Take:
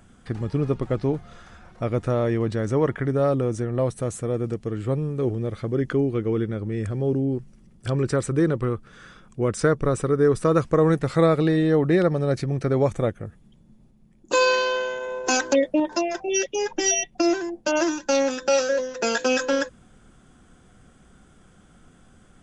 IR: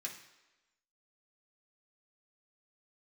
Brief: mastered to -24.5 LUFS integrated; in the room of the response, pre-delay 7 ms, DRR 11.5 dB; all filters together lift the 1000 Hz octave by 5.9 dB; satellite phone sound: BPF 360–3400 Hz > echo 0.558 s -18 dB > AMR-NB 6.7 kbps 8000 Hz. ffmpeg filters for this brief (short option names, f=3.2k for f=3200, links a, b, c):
-filter_complex "[0:a]equalizer=f=1k:t=o:g=7.5,asplit=2[a][b];[1:a]atrim=start_sample=2205,adelay=7[c];[b][c]afir=irnorm=-1:irlink=0,volume=-10dB[d];[a][d]amix=inputs=2:normalize=0,highpass=360,lowpass=3.4k,aecho=1:1:558:0.126" -ar 8000 -c:a libopencore_amrnb -b:a 6700